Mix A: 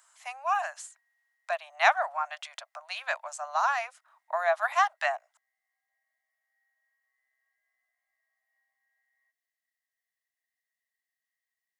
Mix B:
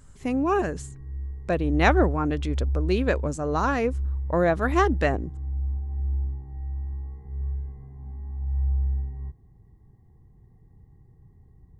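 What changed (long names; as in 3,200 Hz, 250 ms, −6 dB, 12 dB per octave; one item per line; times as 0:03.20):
background: remove Butterworth band-reject 890 Hz, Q 0.56
master: remove Butterworth high-pass 640 Hz 96 dB per octave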